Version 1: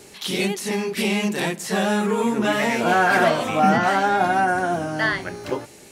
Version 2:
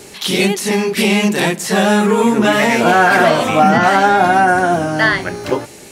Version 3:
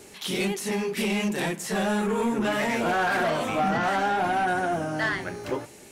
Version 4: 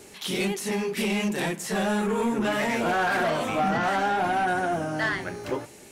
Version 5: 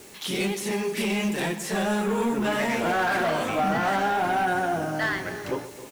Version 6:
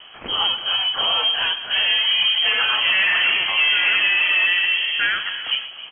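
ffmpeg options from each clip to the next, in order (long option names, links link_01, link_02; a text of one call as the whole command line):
ffmpeg -i in.wav -af "alimiter=level_in=9.5dB:limit=-1dB:release=50:level=0:latency=1,volume=-1dB" out.wav
ffmpeg -i in.wav -af "equalizer=frequency=4400:width=1.9:gain=-3,flanger=delay=2.7:depth=8.8:regen=-79:speed=0.85:shape=triangular,asoftclip=type=tanh:threshold=-13dB,volume=-6dB" out.wav
ffmpeg -i in.wav -af anull out.wav
ffmpeg -i in.wav -filter_complex "[0:a]acrusher=bits=7:mix=0:aa=0.000001,asplit=2[link_01][link_02];[link_02]aecho=0:1:127|263|310:0.188|0.15|0.133[link_03];[link_01][link_03]amix=inputs=2:normalize=0" out.wav
ffmpeg -i in.wav -af "lowpass=frequency=2900:width_type=q:width=0.5098,lowpass=frequency=2900:width_type=q:width=0.6013,lowpass=frequency=2900:width_type=q:width=0.9,lowpass=frequency=2900:width_type=q:width=2.563,afreqshift=-3400,volume=6dB" out.wav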